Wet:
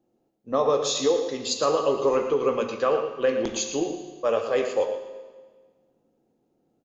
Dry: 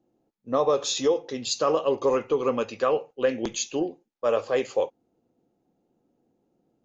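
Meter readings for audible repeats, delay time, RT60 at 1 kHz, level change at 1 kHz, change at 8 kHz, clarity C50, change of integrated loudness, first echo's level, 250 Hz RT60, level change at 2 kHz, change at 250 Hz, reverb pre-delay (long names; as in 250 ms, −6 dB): 1, 115 ms, 1.5 s, +1.0 dB, can't be measured, 6.0 dB, +1.0 dB, −10.0 dB, 1.5 s, +1.0 dB, +0.5 dB, 15 ms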